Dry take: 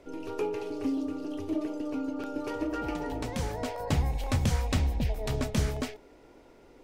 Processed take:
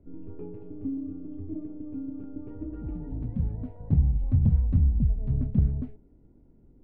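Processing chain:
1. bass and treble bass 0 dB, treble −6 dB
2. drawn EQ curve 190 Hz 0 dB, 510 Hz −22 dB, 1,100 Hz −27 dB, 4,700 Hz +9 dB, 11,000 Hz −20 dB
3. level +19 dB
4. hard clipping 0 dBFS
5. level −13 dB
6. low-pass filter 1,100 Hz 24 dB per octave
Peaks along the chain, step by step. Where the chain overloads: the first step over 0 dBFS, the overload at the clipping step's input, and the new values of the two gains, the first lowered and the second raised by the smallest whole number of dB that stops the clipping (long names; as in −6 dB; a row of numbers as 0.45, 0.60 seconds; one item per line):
−17.0, −15.5, +3.5, 0.0, −13.0, −13.0 dBFS
step 3, 3.5 dB
step 3 +15 dB, step 5 −9 dB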